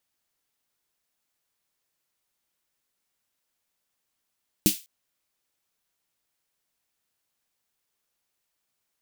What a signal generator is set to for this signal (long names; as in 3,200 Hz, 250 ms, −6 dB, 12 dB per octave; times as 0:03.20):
synth snare length 0.20 s, tones 200 Hz, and 310 Hz, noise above 2,600 Hz, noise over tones −2.5 dB, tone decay 0.11 s, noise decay 0.29 s